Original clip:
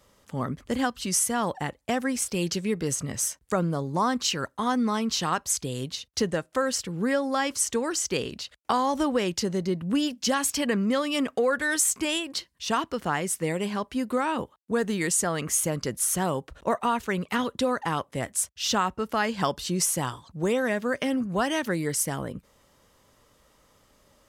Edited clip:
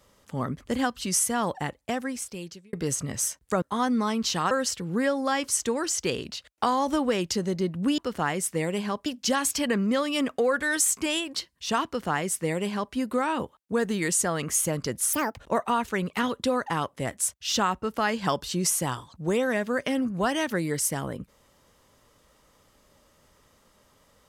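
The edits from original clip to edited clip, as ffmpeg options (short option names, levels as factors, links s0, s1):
-filter_complex "[0:a]asplit=8[s0][s1][s2][s3][s4][s5][s6][s7];[s0]atrim=end=2.73,asetpts=PTS-STARTPTS,afade=t=out:st=1.66:d=1.07[s8];[s1]atrim=start=2.73:end=3.622,asetpts=PTS-STARTPTS,afade=t=in:d=0.004:c=hsin[s9];[s2]atrim=start=4.488:end=5.382[s10];[s3]atrim=start=6.578:end=10.052[s11];[s4]atrim=start=12.848:end=13.932[s12];[s5]atrim=start=10.048:end=16.124[s13];[s6]atrim=start=16.12:end=16.54,asetpts=PTS-STARTPTS,asetrate=72324,aresample=44100[s14];[s7]atrim=start=16.536[s15];[s8][s9]concat=n=2:v=0:a=1[s16];[s16][s10]acrossfade=d=0.004:c1=hsin:c2=hsin[s17];[s17][s11]acrossfade=d=0.004:c1=hsin:c2=hsin[s18];[s18][s12]acrossfade=d=0.004:c1=hsin:c2=hsin[s19];[s19][s13]acrossfade=d=0.004:c1=hsin:c2=hsin[s20];[s20][s14]acrossfade=d=0.004:c1=hsin:c2=hsin[s21];[s21][s15]acrossfade=d=0.004:c1=hsin:c2=hsin"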